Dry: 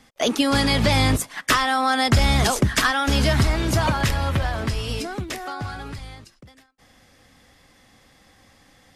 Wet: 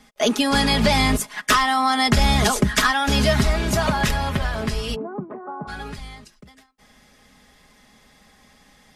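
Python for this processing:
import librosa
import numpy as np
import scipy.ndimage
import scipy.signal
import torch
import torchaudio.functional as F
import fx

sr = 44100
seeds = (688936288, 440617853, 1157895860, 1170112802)

y = fx.ellip_bandpass(x, sr, low_hz=150.0, high_hz=1100.0, order=3, stop_db=60, at=(4.94, 5.67), fade=0.02)
y = y + 0.59 * np.pad(y, (int(4.8 * sr / 1000.0), 0))[:len(y)]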